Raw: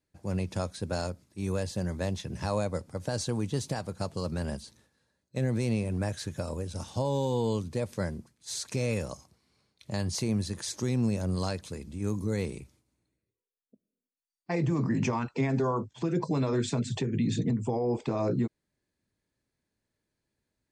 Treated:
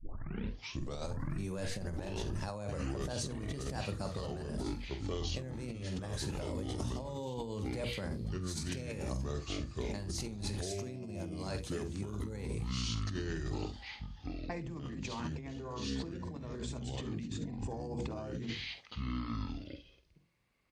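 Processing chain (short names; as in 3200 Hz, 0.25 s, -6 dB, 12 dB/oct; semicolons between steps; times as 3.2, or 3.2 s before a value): tape start at the beginning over 1.13 s; notches 60/120/180/240/300/360/420/480 Hz; echoes that change speed 0.739 s, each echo -6 st, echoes 2; on a send: early reflections 48 ms -10 dB, 69 ms -16 dB; on the sum: negative-ratio compressor -33 dBFS, ratio -1; gain -5.5 dB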